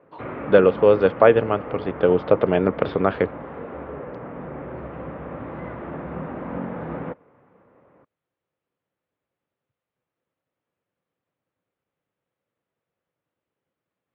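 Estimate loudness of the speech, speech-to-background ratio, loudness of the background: -19.0 LUFS, 15.0 dB, -34.0 LUFS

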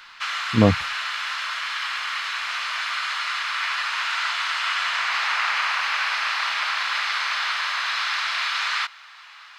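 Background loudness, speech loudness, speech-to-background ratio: -24.0 LUFS, -21.5 LUFS, 2.5 dB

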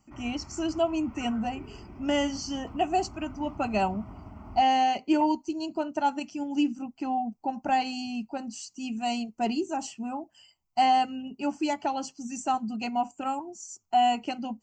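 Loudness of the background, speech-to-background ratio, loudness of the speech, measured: -46.5 LUFS, 17.5 dB, -29.0 LUFS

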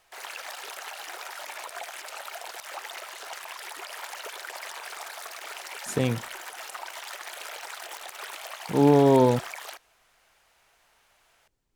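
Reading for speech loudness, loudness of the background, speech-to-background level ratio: -22.0 LUFS, -38.0 LUFS, 16.0 dB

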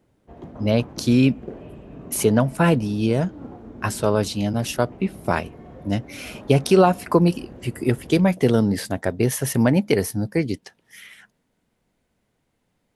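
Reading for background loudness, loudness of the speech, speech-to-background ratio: -41.0 LUFS, -21.5 LUFS, 19.5 dB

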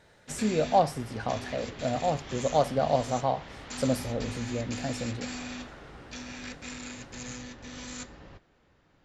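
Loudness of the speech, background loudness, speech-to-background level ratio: -30.0 LUFS, -40.0 LUFS, 10.0 dB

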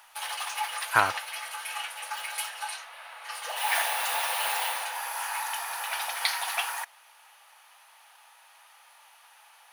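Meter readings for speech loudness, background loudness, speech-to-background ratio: -26.5 LUFS, -30.5 LUFS, 4.0 dB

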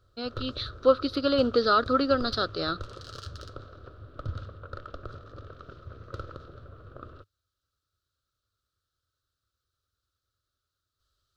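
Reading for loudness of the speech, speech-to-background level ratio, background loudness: -26.0 LUFS, 17.0 dB, -43.0 LUFS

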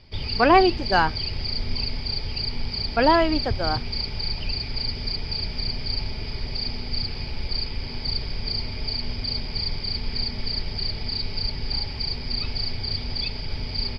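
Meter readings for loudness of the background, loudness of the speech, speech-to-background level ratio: -28.0 LUFS, -21.0 LUFS, 7.0 dB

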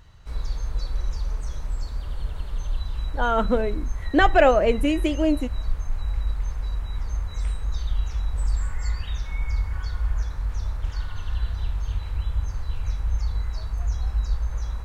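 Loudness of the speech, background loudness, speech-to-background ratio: -21.5 LUFS, -30.5 LUFS, 9.0 dB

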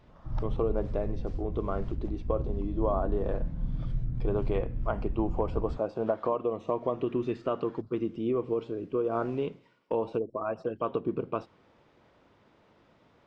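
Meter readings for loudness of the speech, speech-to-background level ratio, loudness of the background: -32.5 LUFS, 4.5 dB, -37.0 LUFS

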